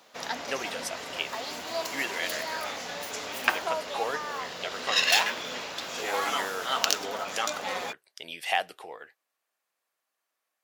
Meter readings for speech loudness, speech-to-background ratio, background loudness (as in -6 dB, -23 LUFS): -34.5 LUFS, -4.0 dB, -30.5 LUFS